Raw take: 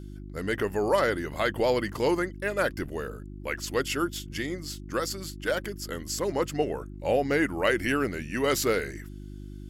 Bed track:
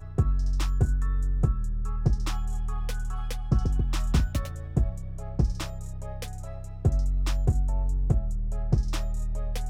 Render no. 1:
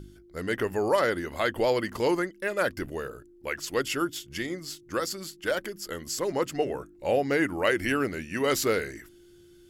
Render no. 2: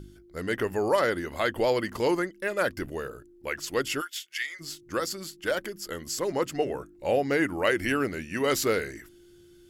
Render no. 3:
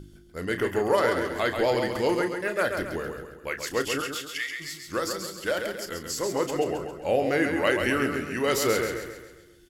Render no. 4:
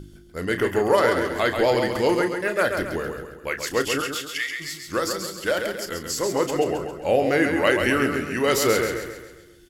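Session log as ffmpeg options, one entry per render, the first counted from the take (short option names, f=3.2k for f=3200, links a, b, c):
-af "bandreject=f=50:t=h:w=4,bandreject=f=100:t=h:w=4,bandreject=f=150:t=h:w=4,bandreject=f=200:t=h:w=4,bandreject=f=250:t=h:w=4,bandreject=f=300:t=h:w=4"
-filter_complex "[0:a]asplit=3[a][b][c];[a]afade=t=out:st=4:d=0.02[d];[b]highpass=f=1.9k:t=q:w=1.8,afade=t=in:st=4:d=0.02,afade=t=out:st=4.59:d=0.02[e];[c]afade=t=in:st=4.59:d=0.02[f];[d][e][f]amix=inputs=3:normalize=0"
-filter_complex "[0:a]asplit=2[a][b];[b]adelay=33,volume=-10.5dB[c];[a][c]amix=inputs=2:normalize=0,aecho=1:1:135|270|405|540|675|810:0.501|0.236|0.111|0.052|0.0245|0.0115"
-af "volume=4dB"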